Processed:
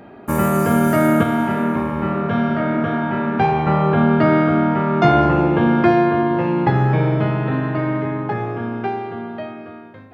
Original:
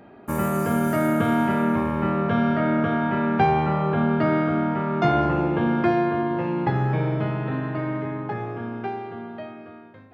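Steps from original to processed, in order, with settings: 1.23–3.67 flange 1.7 Hz, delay 4.3 ms, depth 7.6 ms, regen -70%; gain +6.5 dB

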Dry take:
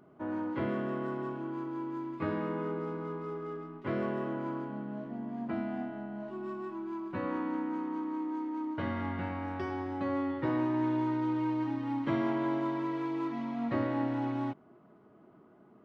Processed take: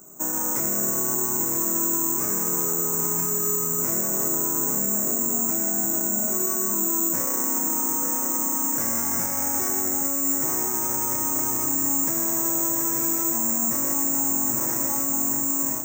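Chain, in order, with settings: self-modulated delay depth 0.2 ms; bell 3000 Hz -12 dB 0.27 oct; diffused feedback echo 0.923 s, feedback 51%, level -7 dB; AGC gain up to 14 dB; bell 85 Hz -13.5 dB 0.41 oct; de-hum 62.33 Hz, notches 10; careless resampling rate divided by 6×, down filtered, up zero stuff; maximiser +13.5 dB; gain -9 dB

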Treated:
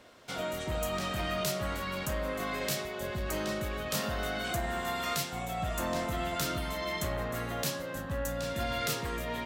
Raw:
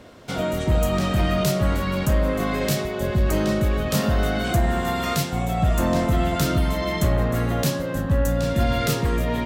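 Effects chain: low shelf 470 Hz -11.5 dB; gain -5.5 dB

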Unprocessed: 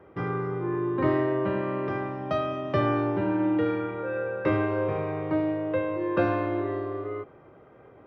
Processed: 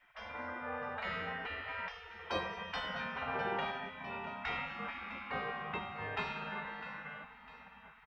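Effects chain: feedback echo 0.653 s, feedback 54%, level -14 dB; spectral gate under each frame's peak -20 dB weak; 2.19–2.64 bell 550 Hz +9 dB 1.3 oct; gain +3.5 dB

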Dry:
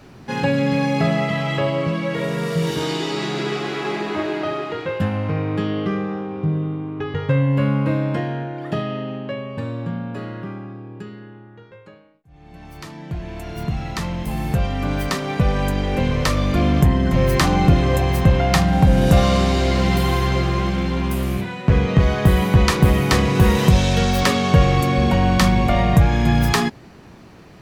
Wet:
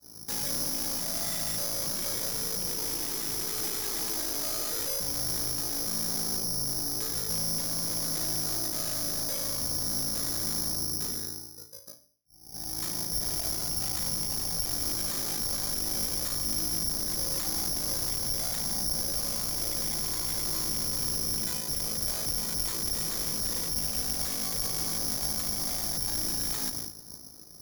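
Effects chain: expander -33 dBFS; ring modulator 27 Hz; dynamic EQ 110 Hz, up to -5 dB, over -31 dBFS, Q 2.2; reverse; compressor 6:1, threshold -30 dBFS, peak gain reduction 18 dB; reverse; limiter -28 dBFS, peak gain reduction 9.5 dB; one-sided clip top -45.5 dBFS, bottom -31.5 dBFS; low-pass opened by the level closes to 1200 Hz, open at -32.5 dBFS; sine folder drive 7 dB, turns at -31 dBFS; on a send at -14 dB: reverb RT60 0.45 s, pre-delay 3 ms; on the sum: careless resampling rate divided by 8×, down filtered, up zero stuff; gain -6 dB

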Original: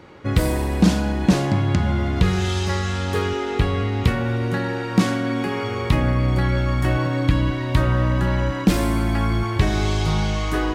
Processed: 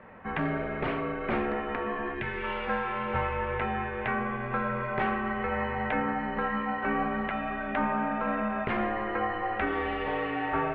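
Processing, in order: mistuned SSB -340 Hz 550–2700 Hz; spectral gain 2.14–2.43, 480–1500 Hz -9 dB

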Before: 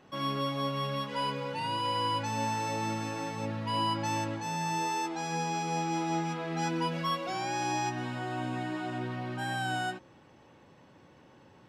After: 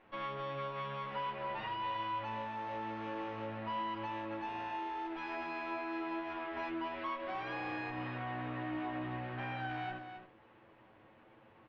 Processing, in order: minimum comb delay 9.2 ms; LPF 2900 Hz 24 dB/oct; low shelf 280 Hz -6.5 dB; compressor, threshold -36 dBFS, peak gain reduction 7.5 dB; echo 0.268 s -8.5 dB; on a send at -16 dB: reverb RT60 0.60 s, pre-delay 3 ms; on the sum: gain -1.5 dB

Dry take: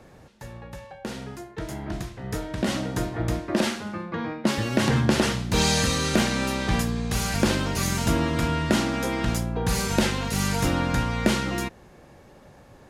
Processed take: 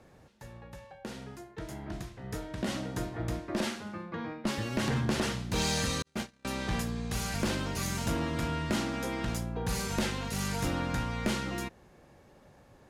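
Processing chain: one-sided clip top -18 dBFS; 6.02–6.45 gate -20 dBFS, range -52 dB; gain -7.5 dB

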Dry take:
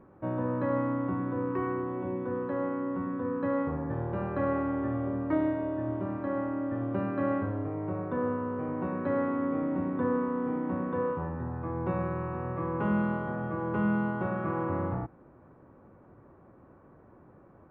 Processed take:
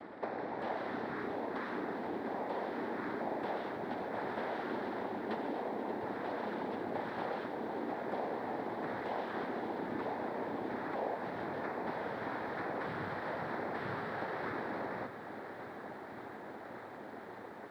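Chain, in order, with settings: HPF 410 Hz 12 dB/oct; notch 1000 Hz, Q 7.1; compressor 8:1, threshold -49 dBFS, peak gain reduction 20.5 dB; noise vocoder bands 6; lo-fi delay 0.58 s, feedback 80%, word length 13-bit, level -12 dB; gain +12.5 dB

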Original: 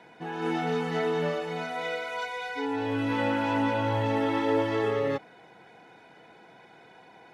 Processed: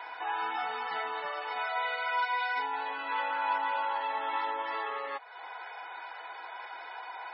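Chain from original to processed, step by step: compressor 3:1, threshold -42 dBFS, peak gain reduction 15.5 dB; resonant high-pass 990 Hz, resonance Q 2.4; gain +8.5 dB; MP3 16 kbps 24000 Hz

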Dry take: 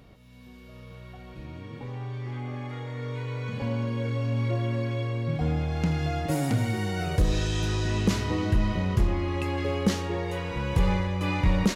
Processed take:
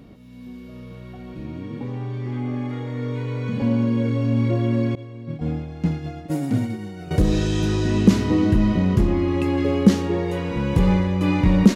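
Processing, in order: 4.95–7.11 expander -19 dBFS; bell 250 Hz +11.5 dB 1.5 oct; gain +1.5 dB

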